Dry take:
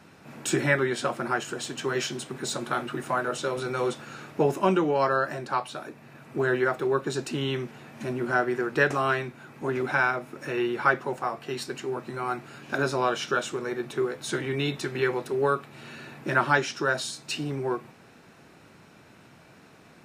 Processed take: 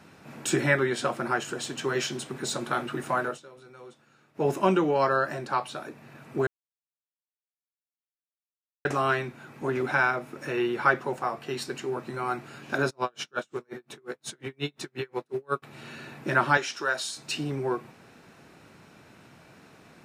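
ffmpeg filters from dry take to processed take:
-filter_complex "[0:a]asplit=3[s0][s1][s2];[s0]afade=t=out:st=12.89:d=0.02[s3];[s1]aeval=exprs='val(0)*pow(10,-40*(0.5-0.5*cos(2*PI*5.6*n/s))/20)':c=same,afade=t=in:st=12.89:d=0.02,afade=t=out:st=15.62:d=0.02[s4];[s2]afade=t=in:st=15.62:d=0.02[s5];[s3][s4][s5]amix=inputs=3:normalize=0,asettb=1/sr,asplit=3[s6][s7][s8];[s6]atrim=end=16.574[s9];[s7]atrim=start=16.57:end=17.17,asetpts=PTS-STARTPTS,afade=t=in:d=0.004:c=qsin,afade=t=out:st=0.596:d=0.004:c=qsin,highpass=f=710:p=1[s10];[s8]atrim=start=17.166[s11];[s9][s10]acrossfade=d=0.004:c1=hsin:c2=qsin[s12];[s12][s11]acrossfade=d=0.004:c1=qsin:c2=hsin,asplit=5[s13][s14][s15][s16][s17];[s13]atrim=end=3.4,asetpts=PTS-STARTPTS,afade=t=out:st=3.25:d=0.15:silence=0.1[s18];[s14]atrim=start=3.4:end=4.34,asetpts=PTS-STARTPTS,volume=0.1[s19];[s15]atrim=start=4.34:end=6.47,asetpts=PTS-STARTPTS,afade=t=in:d=0.15:silence=0.1,afade=t=out:st=2.126:d=0.004:c=hsin[s20];[s16]atrim=start=6.47:end=8.85,asetpts=PTS-STARTPTS,volume=0[s21];[s17]atrim=start=8.85,asetpts=PTS-STARTPTS,afade=t=in:d=0.004:c=hsin[s22];[s18][s19][s20][s21][s22]concat=n=5:v=0:a=1"

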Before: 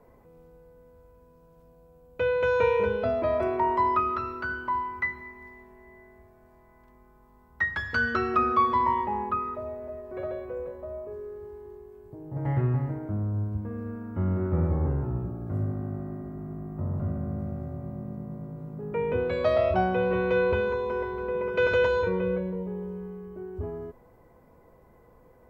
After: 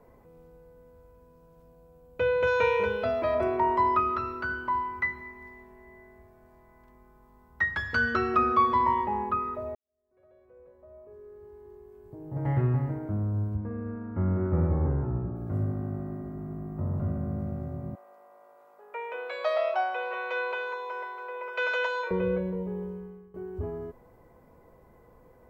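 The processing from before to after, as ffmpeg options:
-filter_complex "[0:a]asettb=1/sr,asplit=3[s0][s1][s2];[s0]atrim=end=2.474[s3];[s1]atrim=start=2.47:end=3.35,asetpts=PTS-STARTPTS,afade=t=in:d=0.004:c=qsin,afade=t=out:st=0.876:d=0.004:c=qsin,tiltshelf=f=860:g=-4.5[s4];[s2]atrim=start=3.346[s5];[s3][s4]acrossfade=d=0.004:c1=hsin:c2=qsin[s6];[s6][s5]acrossfade=d=0.004:c1=qsin:c2=hsin,asettb=1/sr,asplit=3[s7][s8][s9];[s7]atrim=end=13.564[s10];[s8]atrim=start=13.56:end=15.36,asetpts=PTS-STARTPTS,afade=t=in:d=0.004:c=qsin,afade=t=out:st=1.796:d=0.004:c=qsin,lowpass=f=2400:w=0.5412,lowpass=f=2400:w=1.3066[s11];[s9]atrim=start=15.356[s12];[s10][s11]acrossfade=d=0.004:c1=hsin:c2=qsin[s13];[s13][s12]acrossfade=d=0.004:c1=qsin:c2=hsin,asettb=1/sr,asplit=3[s14][s15][s16];[s14]atrim=end=17.954[s17];[s15]atrim=start=17.95:end=22.11,asetpts=PTS-STARTPTS,afade=t=in:d=0.004:c=qsin,afade=t=out:st=4.156:d=0.004:c=qsin,highpass=f=650:w=0.5412,highpass=f=650:w=1.3066[s18];[s16]atrim=start=22.106[s19];[s17][s18]acrossfade=d=0.004:c1=hsin:c2=qsin[s20];[s20][s19]acrossfade=d=0.004:c1=qsin:c2=hsin,asplit=3[s21][s22][s23];[s21]atrim=end=9.75,asetpts=PTS-STARTPTS,afade=t=out:st=9.746:d=0.004:c=hsin[s24];[s22]atrim=start=9.75:end=23.34,asetpts=PTS-STARTPTS,afade=t=in:d=2.54:c=qua,afade=t=out:st=13.07:d=0.52:silence=0.149624[s25];[s23]atrim=start=23.34,asetpts=PTS-STARTPTS,afade=t=in:d=0.004:c=hsin:silence=0.149624[s26];[s24][s25][s26]concat=n=3:v=0:a=1"

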